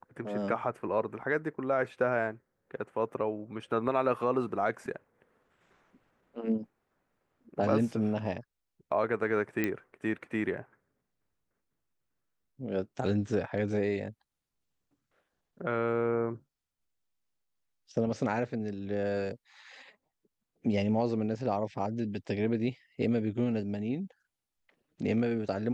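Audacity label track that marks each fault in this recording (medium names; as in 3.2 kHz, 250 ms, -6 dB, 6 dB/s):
9.640000	9.640000	pop -16 dBFS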